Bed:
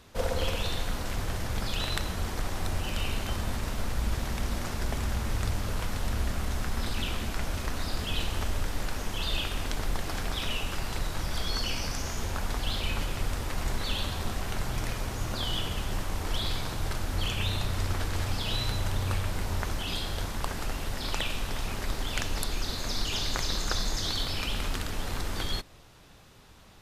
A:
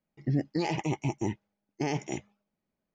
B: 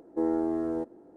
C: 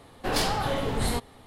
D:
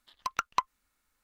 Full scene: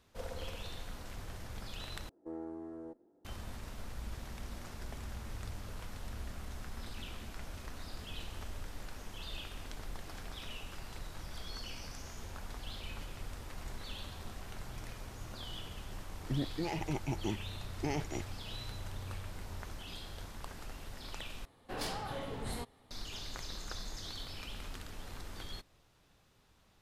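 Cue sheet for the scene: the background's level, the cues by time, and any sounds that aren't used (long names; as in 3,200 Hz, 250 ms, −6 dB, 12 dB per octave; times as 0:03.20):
bed −13.5 dB
0:02.09: overwrite with B −15 dB + one-sided soft clipper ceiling −19.5 dBFS
0:16.03: mix in A −5.5 dB + speech leveller
0:21.45: overwrite with C −13 dB
not used: D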